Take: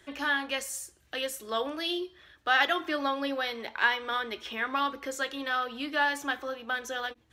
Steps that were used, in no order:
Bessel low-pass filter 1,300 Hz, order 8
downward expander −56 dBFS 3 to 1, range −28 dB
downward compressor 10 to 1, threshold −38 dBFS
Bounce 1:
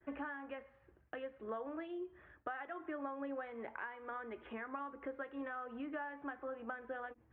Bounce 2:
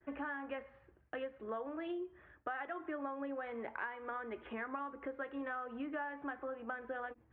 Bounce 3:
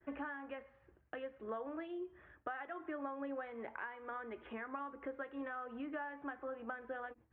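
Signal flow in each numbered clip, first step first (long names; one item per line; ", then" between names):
downward expander, then downward compressor, then Bessel low-pass filter
downward expander, then Bessel low-pass filter, then downward compressor
downward compressor, then downward expander, then Bessel low-pass filter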